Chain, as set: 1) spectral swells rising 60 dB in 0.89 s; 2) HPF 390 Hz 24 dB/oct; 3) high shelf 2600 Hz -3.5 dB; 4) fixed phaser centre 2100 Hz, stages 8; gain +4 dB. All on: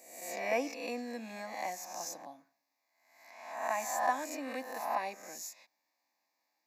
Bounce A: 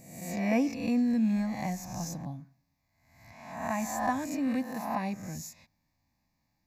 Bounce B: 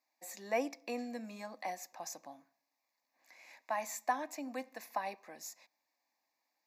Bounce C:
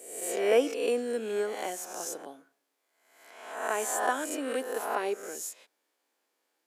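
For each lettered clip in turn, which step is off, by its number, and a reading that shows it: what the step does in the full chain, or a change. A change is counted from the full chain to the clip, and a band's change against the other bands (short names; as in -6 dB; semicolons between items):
2, 250 Hz band +16.5 dB; 1, 250 Hz band +3.5 dB; 4, 1 kHz band -5.5 dB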